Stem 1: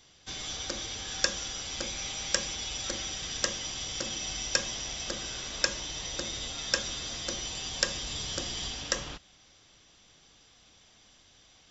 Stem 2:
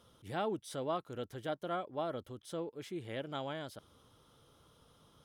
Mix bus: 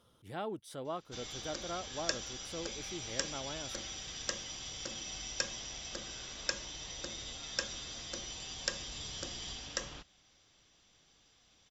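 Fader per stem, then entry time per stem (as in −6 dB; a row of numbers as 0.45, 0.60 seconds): −7.5, −3.5 decibels; 0.85, 0.00 seconds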